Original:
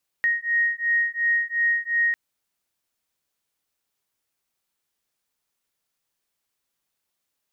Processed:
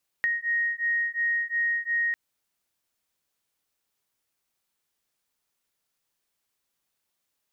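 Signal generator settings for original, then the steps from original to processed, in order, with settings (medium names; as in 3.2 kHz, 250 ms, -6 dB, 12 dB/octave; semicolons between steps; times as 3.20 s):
beating tones 1.87 kHz, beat 2.8 Hz, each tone -23 dBFS 1.90 s
compression, threshold -24 dBFS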